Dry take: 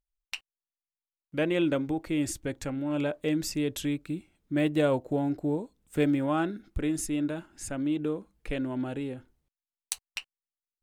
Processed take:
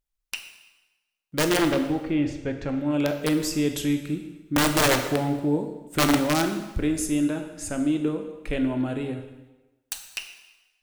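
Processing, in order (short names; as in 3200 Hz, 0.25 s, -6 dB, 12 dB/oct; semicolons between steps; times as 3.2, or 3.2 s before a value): wrapped overs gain 19 dB; 1.57–2.69 air absorption 220 m; reverb RT60 1.1 s, pre-delay 7 ms, DRR 6 dB; gain +4 dB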